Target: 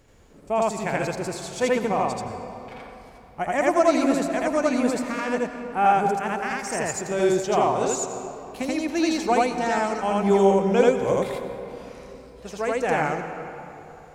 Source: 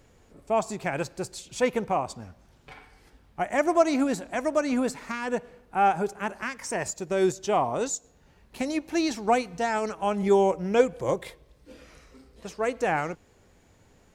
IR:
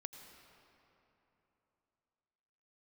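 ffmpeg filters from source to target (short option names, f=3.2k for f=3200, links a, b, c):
-filter_complex "[0:a]asplit=2[a][b];[1:a]atrim=start_sample=2205,adelay=82[c];[b][c]afir=irnorm=-1:irlink=0,volume=5.5dB[d];[a][d]amix=inputs=2:normalize=0"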